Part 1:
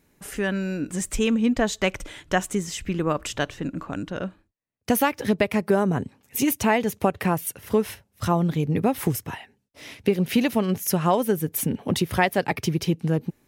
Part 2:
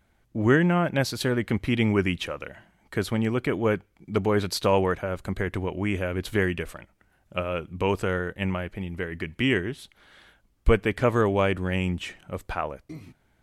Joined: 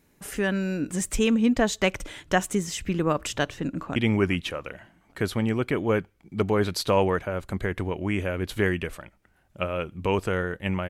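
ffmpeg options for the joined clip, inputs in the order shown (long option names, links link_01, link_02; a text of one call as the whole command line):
ffmpeg -i cue0.wav -i cue1.wav -filter_complex "[0:a]apad=whole_dur=10.89,atrim=end=10.89,atrim=end=3.962[link_01];[1:a]atrim=start=1.718:end=8.65[link_02];[link_01][link_02]acrossfade=duration=0.004:curve1=hsin:curve2=hsin,asplit=2[link_03][link_04];[link_04]afade=type=in:start_time=3.66:duration=0.01,afade=type=out:start_time=3.96:duration=0.01,aecho=0:1:400|800|1200:0.149624|0.0598494|0.0239398[link_05];[link_03][link_05]amix=inputs=2:normalize=0" out.wav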